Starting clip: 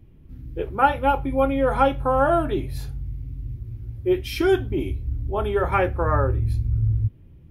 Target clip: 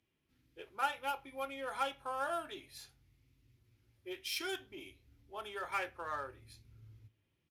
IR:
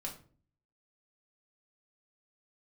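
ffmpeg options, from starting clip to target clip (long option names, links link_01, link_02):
-filter_complex "[0:a]aresample=32000,aresample=44100,adynamicsmooth=sensitivity=5:basefreq=6000,aderivative,asplit=2[link_01][link_02];[1:a]atrim=start_sample=2205,asetrate=57330,aresample=44100[link_03];[link_02][link_03]afir=irnorm=-1:irlink=0,volume=-13dB[link_04];[link_01][link_04]amix=inputs=2:normalize=0"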